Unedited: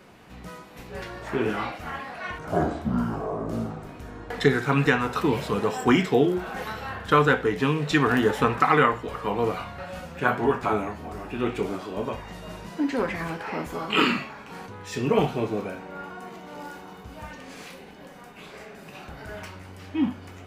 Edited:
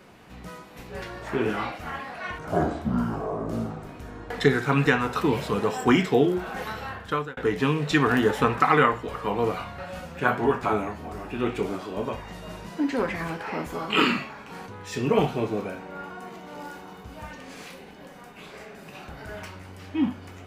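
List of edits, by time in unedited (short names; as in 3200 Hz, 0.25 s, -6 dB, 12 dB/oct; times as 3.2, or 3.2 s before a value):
6.83–7.37 fade out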